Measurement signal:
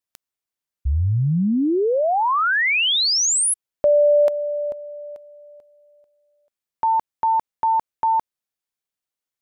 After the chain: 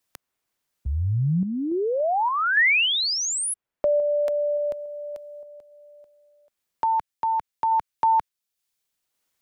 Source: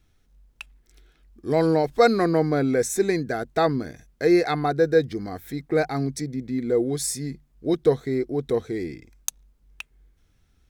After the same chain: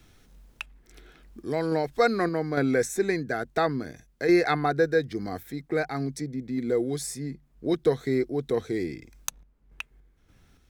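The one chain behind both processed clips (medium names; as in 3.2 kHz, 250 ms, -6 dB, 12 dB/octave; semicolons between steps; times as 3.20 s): dynamic bell 1.7 kHz, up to +5 dB, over -37 dBFS, Q 1.2; random-step tremolo, depth 65%; three bands compressed up and down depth 40%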